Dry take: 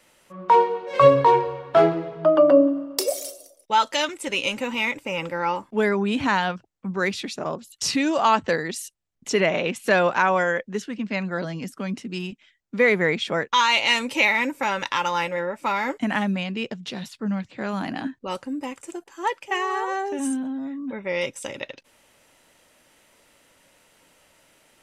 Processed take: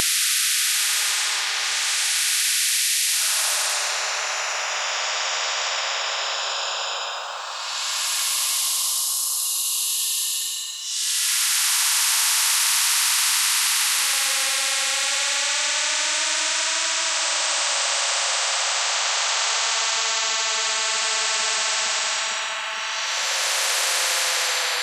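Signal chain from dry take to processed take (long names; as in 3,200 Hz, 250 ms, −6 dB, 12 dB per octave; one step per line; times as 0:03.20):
extreme stretch with random phases 18×, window 0.10 s, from 0:07.17
Bessel high-pass filter 1,800 Hz, order 6
tape delay 457 ms, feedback 71%, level −17.5 dB, low-pass 3,400 Hz
every bin compressed towards the loudest bin 10 to 1
level +6.5 dB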